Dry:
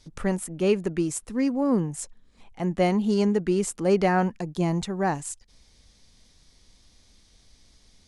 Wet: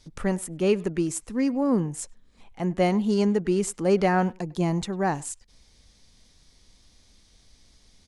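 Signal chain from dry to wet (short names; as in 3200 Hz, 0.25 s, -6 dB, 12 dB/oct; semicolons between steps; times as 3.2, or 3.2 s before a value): speakerphone echo 0.1 s, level -22 dB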